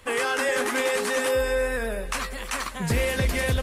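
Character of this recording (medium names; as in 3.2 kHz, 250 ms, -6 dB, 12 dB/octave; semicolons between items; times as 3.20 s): noise floor -35 dBFS; spectral tilt -4.0 dB/octave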